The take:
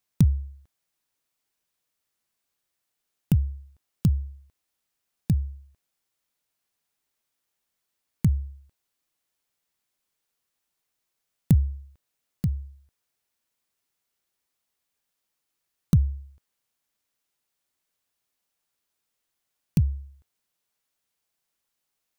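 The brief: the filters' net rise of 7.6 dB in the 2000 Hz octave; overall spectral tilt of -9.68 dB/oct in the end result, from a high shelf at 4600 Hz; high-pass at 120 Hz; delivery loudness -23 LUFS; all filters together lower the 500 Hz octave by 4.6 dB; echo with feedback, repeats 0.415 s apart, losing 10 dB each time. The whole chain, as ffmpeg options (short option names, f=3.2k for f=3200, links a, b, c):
-af "highpass=120,equalizer=f=500:t=o:g=-7,equalizer=f=2k:t=o:g=8.5,highshelf=f=4.6k:g=7,aecho=1:1:415|830|1245|1660:0.316|0.101|0.0324|0.0104,volume=9dB"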